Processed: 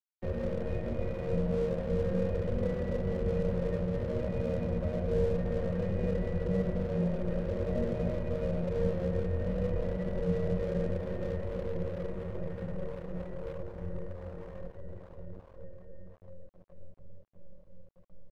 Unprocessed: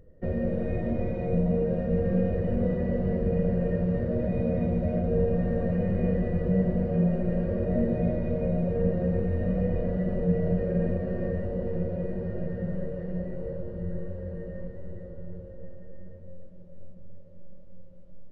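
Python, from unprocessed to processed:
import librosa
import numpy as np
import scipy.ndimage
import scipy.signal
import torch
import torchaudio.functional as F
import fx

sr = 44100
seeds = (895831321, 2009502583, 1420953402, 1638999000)

y = x + 0.36 * np.pad(x, (int(2.0 * sr / 1000.0), 0))[:len(x)]
y = np.sign(y) * np.maximum(np.abs(y) - 10.0 ** (-40.5 / 20.0), 0.0)
y = F.gain(torch.from_numpy(y), -4.5).numpy()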